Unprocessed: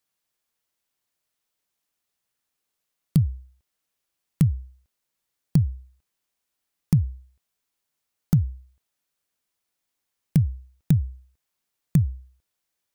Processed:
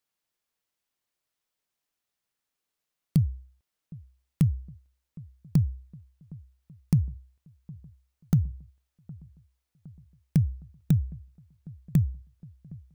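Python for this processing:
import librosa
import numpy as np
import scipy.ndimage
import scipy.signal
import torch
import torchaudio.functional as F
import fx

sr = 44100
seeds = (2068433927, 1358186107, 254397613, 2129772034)

p1 = fx.sample_hold(x, sr, seeds[0], rate_hz=19000.0, jitter_pct=0)
p2 = x + F.gain(torch.from_numpy(p1), -12.0).numpy()
p3 = fx.echo_wet_lowpass(p2, sr, ms=763, feedback_pct=63, hz=940.0, wet_db=-21.5)
y = F.gain(torch.from_numpy(p3), -5.0).numpy()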